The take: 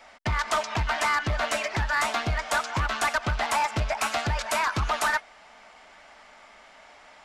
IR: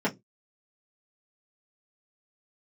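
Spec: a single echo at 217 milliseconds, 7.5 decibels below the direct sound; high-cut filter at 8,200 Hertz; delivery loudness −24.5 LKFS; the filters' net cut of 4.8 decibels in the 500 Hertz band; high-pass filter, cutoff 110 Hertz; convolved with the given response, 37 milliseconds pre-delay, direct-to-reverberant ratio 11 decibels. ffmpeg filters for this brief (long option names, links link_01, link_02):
-filter_complex "[0:a]highpass=110,lowpass=8200,equalizer=frequency=500:width_type=o:gain=-7,aecho=1:1:217:0.422,asplit=2[link_01][link_02];[1:a]atrim=start_sample=2205,adelay=37[link_03];[link_02][link_03]afir=irnorm=-1:irlink=0,volume=-22dB[link_04];[link_01][link_04]amix=inputs=2:normalize=0,volume=2.5dB"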